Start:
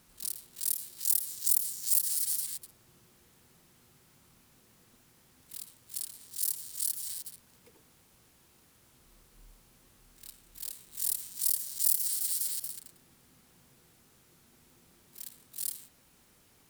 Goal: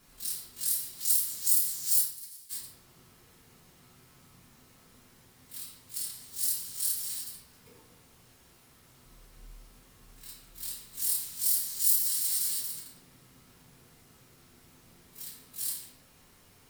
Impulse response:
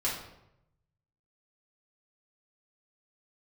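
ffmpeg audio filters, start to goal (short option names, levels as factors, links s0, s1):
-filter_complex "[0:a]asplit=3[s0][s1][s2];[s0]afade=t=out:st=1.99:d=0.02[s3];[s1]agate=range=0.0794:threshold=0.0501:ratio=16:detection=peak,afade=t=in:st=1.99:d=0.02,afade=t=out:st=2.49:d=0.02[s4];[s2]afade=t=in:st=2.49:d=0.02[s5];[s3][s4][s5]amix=inputs=3:normalize=0[s6];[1:a]atrim=start_sample=2205[s7];[s6][s7]afir=irnorm=-1:irlink=0,volume=0.794"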